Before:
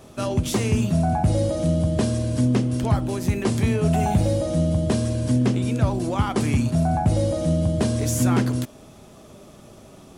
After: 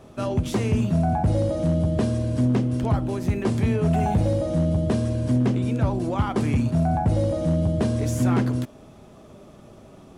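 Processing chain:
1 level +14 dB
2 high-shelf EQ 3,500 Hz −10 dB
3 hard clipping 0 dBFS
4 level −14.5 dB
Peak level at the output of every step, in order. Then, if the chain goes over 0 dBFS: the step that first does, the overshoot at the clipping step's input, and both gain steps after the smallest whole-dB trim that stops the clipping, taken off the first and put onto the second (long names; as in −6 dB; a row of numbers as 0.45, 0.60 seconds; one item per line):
+4.0, +3.5, 0.0, −14.5 dBFS
step 1, 3.5 dB
step 1 +10 dB, step 4 −10.5 dB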